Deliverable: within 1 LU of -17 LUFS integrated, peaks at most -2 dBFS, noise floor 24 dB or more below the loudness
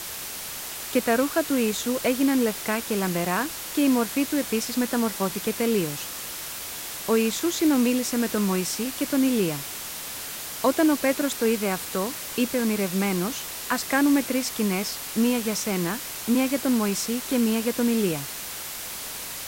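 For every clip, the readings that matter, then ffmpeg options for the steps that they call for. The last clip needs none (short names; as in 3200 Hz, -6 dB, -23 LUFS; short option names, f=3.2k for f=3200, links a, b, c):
noise floor -35 dBFS; noise floor target -49 dBFS; loudness -25.0 LUFS; peak -10.0 dBFS; loudness target -17.0 LUFS
-> -af "afftdn=nr=14:nf=-35"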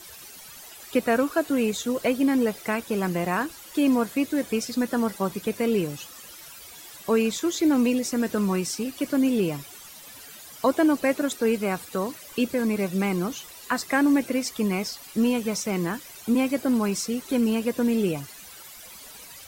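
noise floor -45 dBFS; noise floor target -49 dBFS
-> -af "afftdn=nr=6:nf=-45"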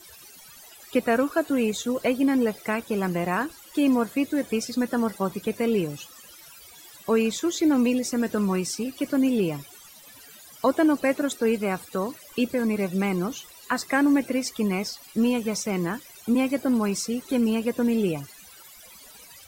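noise floor -48 dBFS; noise floor target -49 dBFS
-> -af "afftdn=nr=6:nf=-48"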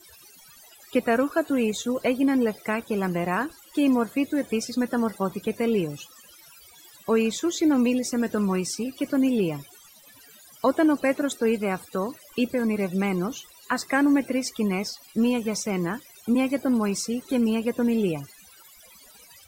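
noise floor -52 dBFS; loudness -25.0 LUFS; peak -10.5 dBFS; loudness target -17.0 LUFS
-> -af "volume=8dB"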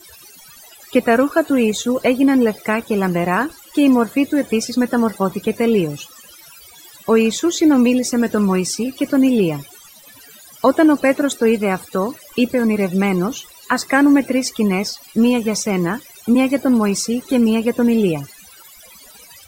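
loudness -17.0 LUFS; peak -2.5 dBFS; noise floor -44 dBFS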